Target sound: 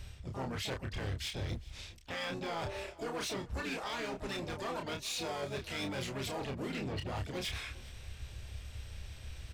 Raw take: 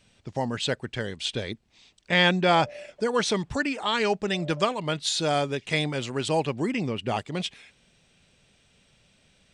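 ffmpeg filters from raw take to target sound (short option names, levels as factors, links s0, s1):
-filter_complex "[0:a]lowshelf=f=110:t=q:w=3:g=13.5,alimiter=limit=0.0944:level=0:latency=1:release=24,areverse,acompressor=threshold=0.00708:ratio=6,areverse,asplit=3[s0][s1][s2];[s1]asetrate=29433,aresample=44100,atempo=1.49831,volume=0.501[s3];[s2]asetrate=66075,aresample=44100,atempo=0.66742,volume=0.447[s4];[s0][s3][s4]amix=inputs=3:normalize=0,asoftclip=type=hard:threshold=0.0106,asplit=2[s5][s6];[s6]adelay=30,volume=0.562[s7];[s5][s7]amix=inputs=2:normalize=0,aecho=1:1:405:0.0841,volume=1.78"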